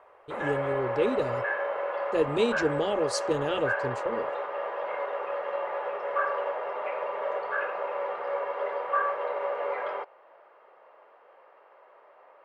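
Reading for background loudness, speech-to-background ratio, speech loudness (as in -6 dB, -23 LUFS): -31.0 LUFS, 1.0 dB, -30.0 LUFS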